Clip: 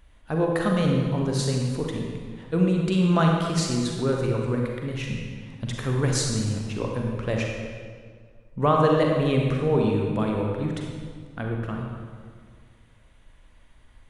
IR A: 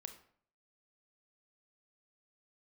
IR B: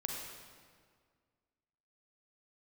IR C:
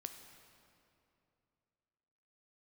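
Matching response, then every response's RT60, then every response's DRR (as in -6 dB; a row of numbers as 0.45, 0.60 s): B; 0.55, 1.9, 2.7 s; 6.5, -0.5, 6.0 dB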